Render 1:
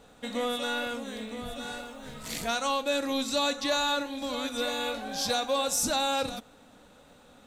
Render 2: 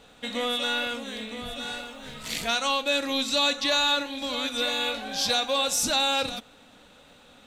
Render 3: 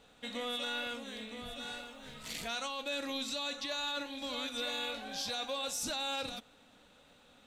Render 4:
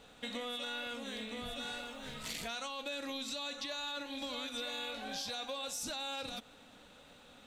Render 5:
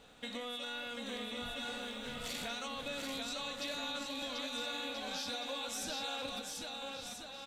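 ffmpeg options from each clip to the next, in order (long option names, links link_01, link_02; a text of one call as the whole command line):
ffmpeg -i in.wav -af "equalizer=frequency=3000:width=0.83:gain=8" out.wav
ffmpeg -i in.wav -af "alimiter=limit=-20dB:level=0:latency=1:release=16,volume=-8.5dB" out.wav
ffmpeg -i in.wav -af "acompressor=threshold=-42dB:ratio=5,volume=4dB" out.wav
ffmpeg -i in.wav -af "aecho=1:1:740|1332|1806|2184|2488:0.631|0.398|0.251|0.158|0.1,volume=-1.5dB" out.wav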